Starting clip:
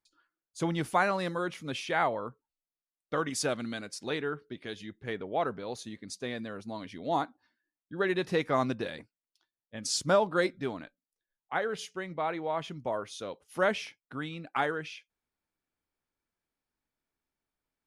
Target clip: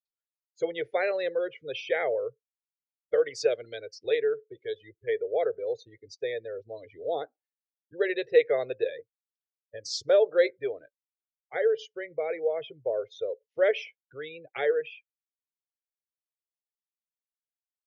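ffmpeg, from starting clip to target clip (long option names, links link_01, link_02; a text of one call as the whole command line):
ffmpeg -i in.wav -filter_complex "[0:a]afftdn=noise_reduction=32:noise_floor=-40,firequalizer=gain_entry='entry(130,0);entry(200,-27);entry(300,-11);entry(450,13);entry(980,-19);entry(1900,4);entry(5800,-2);entry(10000,-25)':delay=0.05:min_phase=1,acrossover=split=260|5200[link_01][link_02][link_03];[link_01]acompressor=threshold=-56dB:ratio=6[link_04];[link_04][link_02][link_03]amix=inputs=3:normalize=0" out.wav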